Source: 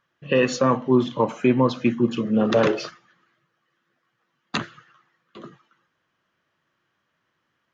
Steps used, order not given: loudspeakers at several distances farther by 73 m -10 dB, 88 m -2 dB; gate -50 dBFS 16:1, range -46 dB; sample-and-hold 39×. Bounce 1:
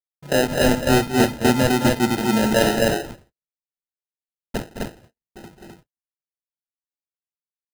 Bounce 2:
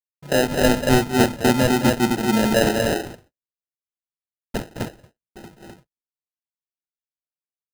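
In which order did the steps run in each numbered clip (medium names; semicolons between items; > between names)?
sample-and-hold > loudspeakers at several distances > gate; loudspeakers at several distances > sample-and-hold > gate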